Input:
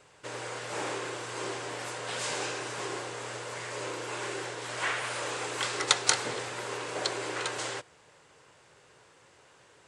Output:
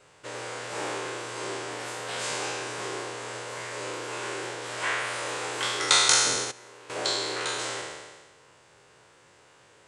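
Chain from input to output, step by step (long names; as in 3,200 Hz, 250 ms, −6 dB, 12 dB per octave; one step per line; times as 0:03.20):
peak hold with a decay on every bin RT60 1.43 s
0:06.44–0:06.90: output level in coarse steps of 16 dB
level −1 dB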